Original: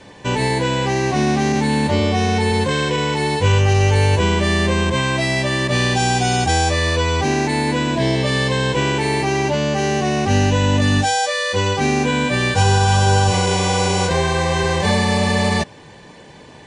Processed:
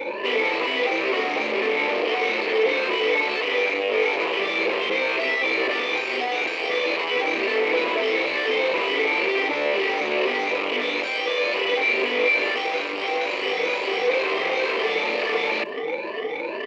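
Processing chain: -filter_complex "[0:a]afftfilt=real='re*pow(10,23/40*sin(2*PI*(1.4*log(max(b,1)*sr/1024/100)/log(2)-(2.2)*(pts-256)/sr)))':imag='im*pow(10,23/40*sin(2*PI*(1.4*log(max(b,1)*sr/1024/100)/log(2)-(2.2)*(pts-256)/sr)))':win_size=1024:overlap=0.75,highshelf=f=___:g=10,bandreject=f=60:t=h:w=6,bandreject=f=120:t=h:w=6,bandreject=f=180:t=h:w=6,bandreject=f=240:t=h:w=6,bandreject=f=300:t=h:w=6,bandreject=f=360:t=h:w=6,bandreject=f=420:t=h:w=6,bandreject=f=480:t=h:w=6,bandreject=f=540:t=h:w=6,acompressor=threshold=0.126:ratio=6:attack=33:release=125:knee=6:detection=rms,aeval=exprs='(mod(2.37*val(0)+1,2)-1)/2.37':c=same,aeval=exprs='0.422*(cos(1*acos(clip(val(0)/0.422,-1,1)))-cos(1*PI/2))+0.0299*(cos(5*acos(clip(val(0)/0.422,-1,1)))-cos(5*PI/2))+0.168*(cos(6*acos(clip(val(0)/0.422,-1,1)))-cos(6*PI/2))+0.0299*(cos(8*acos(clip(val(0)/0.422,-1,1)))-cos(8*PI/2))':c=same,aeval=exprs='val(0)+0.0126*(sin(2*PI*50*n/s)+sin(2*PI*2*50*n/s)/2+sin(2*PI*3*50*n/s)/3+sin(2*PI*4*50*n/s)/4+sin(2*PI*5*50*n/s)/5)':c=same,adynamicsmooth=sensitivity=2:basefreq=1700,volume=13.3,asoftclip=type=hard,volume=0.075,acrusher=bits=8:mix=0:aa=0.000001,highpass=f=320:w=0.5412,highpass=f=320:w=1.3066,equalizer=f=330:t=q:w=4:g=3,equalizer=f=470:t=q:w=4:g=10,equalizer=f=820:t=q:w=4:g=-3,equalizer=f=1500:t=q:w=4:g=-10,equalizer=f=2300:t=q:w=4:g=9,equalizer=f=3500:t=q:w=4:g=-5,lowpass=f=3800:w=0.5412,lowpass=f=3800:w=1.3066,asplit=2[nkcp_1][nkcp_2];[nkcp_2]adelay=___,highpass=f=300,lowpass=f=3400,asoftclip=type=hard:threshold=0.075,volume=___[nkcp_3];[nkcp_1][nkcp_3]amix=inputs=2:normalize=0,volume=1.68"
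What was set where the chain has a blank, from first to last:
2900, 160, 0.0891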